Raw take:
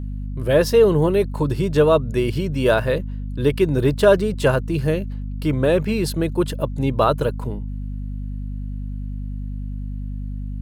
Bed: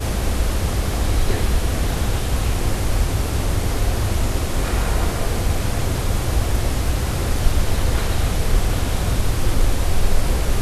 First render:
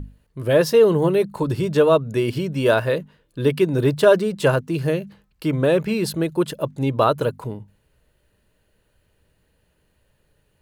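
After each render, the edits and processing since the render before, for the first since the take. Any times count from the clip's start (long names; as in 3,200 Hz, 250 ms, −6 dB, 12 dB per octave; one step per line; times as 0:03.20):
mains-hum notches 50/100/150/200/250 Hz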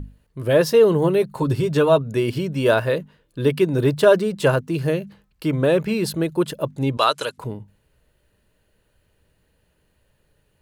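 0:01.22–0:02.02: comb filter 7.5 ms, depth 44%
0:06.97–0:07.38: meter weighting curve ITU-R 468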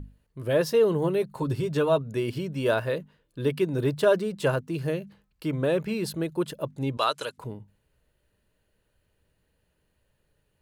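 level −7 dB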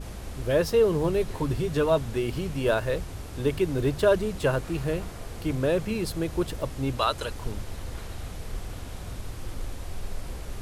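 mix in bed −17 dB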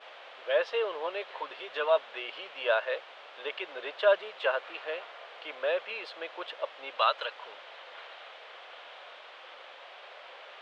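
elliptic band-pass filter 550–3,300 Hz, stop band 80 dB
spectral tilt +2 dB per octave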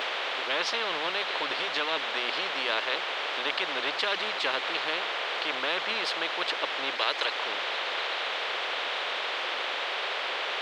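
upward compression, threshold −44 dBFS
every bin compressed towards the loudest bin 4 to 1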